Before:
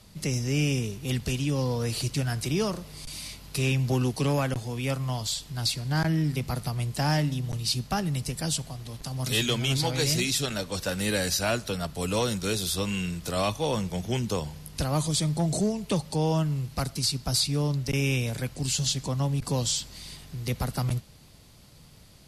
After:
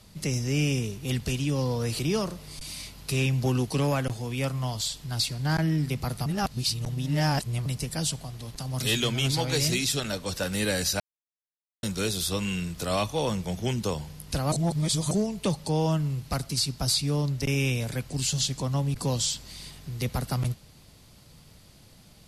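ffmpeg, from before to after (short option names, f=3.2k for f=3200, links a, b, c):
-filter_complex "[0:a]asplit=8[a][b][c][d][e][f][g][h];[a]atrim=end=1.992[i];[b]atrim=start=2.448:end=6.722[j];[c]atrim=start=6.718:end=8.122,asetpts=PTS-STARTPTS,areverse[k];[d]atrim=start=8.118:end=11.46,asetpts=PTS-STARTPTS,afade=t=out:st=3.338:d=0.004:c=hsin[l];[e]atrim=start=11.46:end=12.29,asetpts=PTS-STARTPTS,volume=0[m];[f]atrim=start=12.29:end=14.982,asetpts=PTS-STARTPTS,afade=t=in:d=0.004:c=hsin[n];[g]atrim=start=14.978:end=15.572,asetpts=PTS-STARTPTS,areverse[o];[h]atrim=start=15.568[p];[i][j]acrossfade=d=0.004:c1=hsin:c2=hsin[q];[q][k]acrossfade=d=0.004:c1=hsin:c2=hsin[r];[l][m][n]concat=n=3:v=0:a=1[s];[r][s]acrossfade=d=0.004:c1=hsin:c2=hsin[t];[t][o]acrossfade=d=0.004:c1=hsin:c2=hsin[u];[u][p]acrossfade=d=0.004:c1=hsin:c2=hsin"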